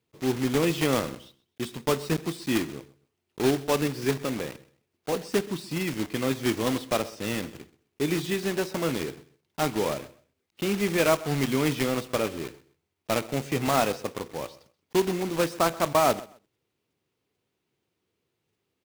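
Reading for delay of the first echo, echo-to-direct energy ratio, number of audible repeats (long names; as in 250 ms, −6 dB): 129 ms, −20.0 dB, 2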